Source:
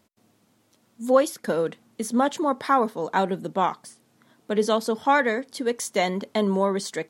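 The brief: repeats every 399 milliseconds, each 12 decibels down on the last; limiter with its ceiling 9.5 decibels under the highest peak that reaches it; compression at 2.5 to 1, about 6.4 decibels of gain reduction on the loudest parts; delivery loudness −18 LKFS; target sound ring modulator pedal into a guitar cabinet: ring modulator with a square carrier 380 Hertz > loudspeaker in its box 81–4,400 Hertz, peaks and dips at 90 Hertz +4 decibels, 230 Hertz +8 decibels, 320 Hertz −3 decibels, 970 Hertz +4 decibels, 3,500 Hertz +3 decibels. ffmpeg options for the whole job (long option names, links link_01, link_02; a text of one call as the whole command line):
ffmpeg -i in.wav -af "acompressor=threshold=-23dB:ratio=2.5,alimiter=limit=-20dB:level=0:latency=1,aecho=1:1:399|798|1197:0.251|0.0628|0.0157,aeval=exprs='val(0)*sgn(sin(2*PI*380*n/s))':channel_layout=same,highpass=81,equalizer=frequency=90:width_type=q:width=4:gain=4,equalizer=frequency=230:width_type=q:width=4:gain=8,equalizer=frequency=320:width_type=q:width=4:gain=-3,equalizer=frequency=970:width_type=q:width=4:gain=4,equalizer=frequency=3500:width_type=q:width=4:gain=3,lowpass=frequency=4400:width=0.5412,lowpass=frequency=4400:width=1.3066,volume=12dB" out.wav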